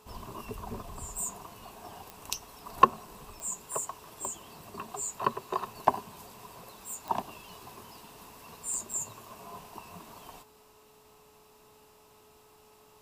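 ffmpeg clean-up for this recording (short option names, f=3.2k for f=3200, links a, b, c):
-af "adeclick=t=4,bandreject=f=427.2:t=h:w=4,bandreject=f=854.4:t=h:w=4,bandreject=f=1.2816k:t=h:w=4"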